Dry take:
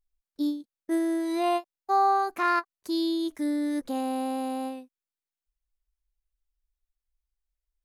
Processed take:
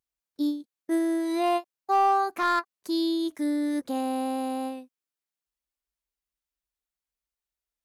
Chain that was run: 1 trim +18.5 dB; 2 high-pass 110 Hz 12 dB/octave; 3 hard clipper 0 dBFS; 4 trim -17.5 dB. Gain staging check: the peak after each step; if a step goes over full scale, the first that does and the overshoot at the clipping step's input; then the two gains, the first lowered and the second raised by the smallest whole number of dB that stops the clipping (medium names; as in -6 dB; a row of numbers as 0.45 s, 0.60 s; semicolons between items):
+4.5 dBFS, +4.5 dBFS, 0.0 dBFS, -17.5 dBFS; step 1, 4.5 dB; step 1 +13.5 dB, step 4 -12.5 dB